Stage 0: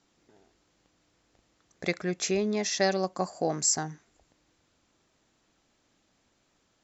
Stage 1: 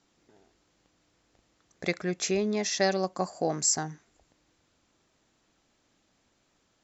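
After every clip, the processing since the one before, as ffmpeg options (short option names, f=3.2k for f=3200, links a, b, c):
-af anull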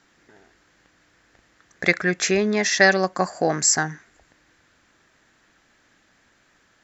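-af "equalizer=f=1.7k:t=o:w=0.79:g=12,volume=6.5dB"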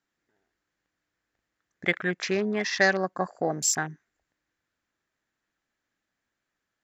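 -af "afwtdn=0.0398,volume=-6dB"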